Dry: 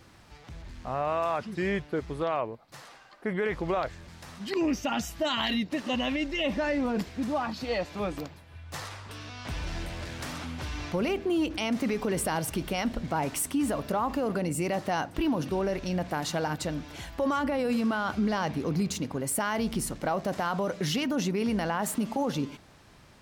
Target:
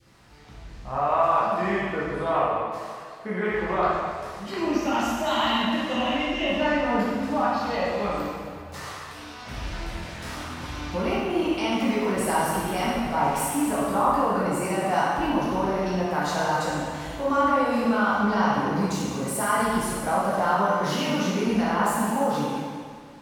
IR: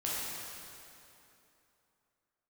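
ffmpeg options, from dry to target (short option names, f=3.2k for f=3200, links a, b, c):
-filter_complex "[0:a]adynamicequalizer=threshold=0.00708:dfrequency=1000:dqfactor=1:tfrequency=1000:tqfactor=1:attack=5:release=100:ratio=0.375:range=4:mode=boostabove:tftype=bell[a];[1:a]atrim=start_sample=2205,asetrate=66150,aresample=44100[b];[a][b]afir=irnorm=-1:irlink=0"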